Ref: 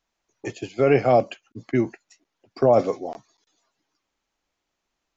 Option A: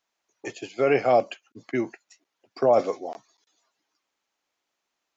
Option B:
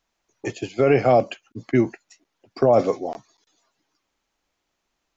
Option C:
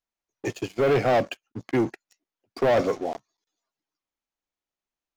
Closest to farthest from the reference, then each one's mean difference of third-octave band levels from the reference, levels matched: B, A, C; 1.0, 2.5, 6.0 dB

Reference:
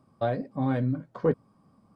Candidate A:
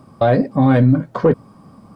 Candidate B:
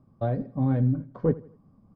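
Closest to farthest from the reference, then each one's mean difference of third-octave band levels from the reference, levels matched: A, B; 2.0, 4.0 dB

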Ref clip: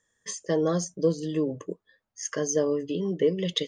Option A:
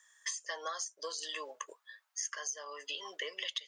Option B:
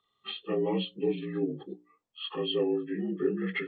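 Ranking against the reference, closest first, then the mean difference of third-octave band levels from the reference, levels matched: B, A; 8.5, 13.0 dB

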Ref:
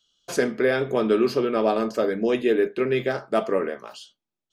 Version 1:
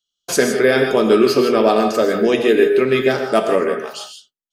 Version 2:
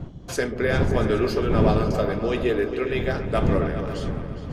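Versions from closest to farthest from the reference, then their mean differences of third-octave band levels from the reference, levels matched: 1, 2; 4.5, 6.5 dB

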